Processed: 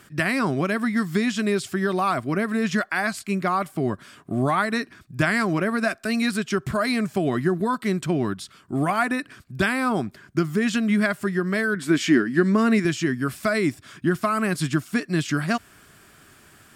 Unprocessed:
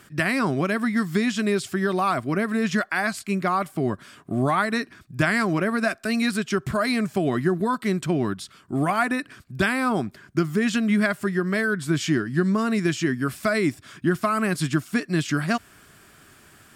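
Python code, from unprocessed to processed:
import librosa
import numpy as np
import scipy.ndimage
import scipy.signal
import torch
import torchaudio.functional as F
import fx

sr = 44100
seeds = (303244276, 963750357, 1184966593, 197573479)

y = fx.graphic_eq(x, sr, hz=(125, 250, 500, 2000), db=(-11, 8, 3, 6), at=(11.75, 12.85))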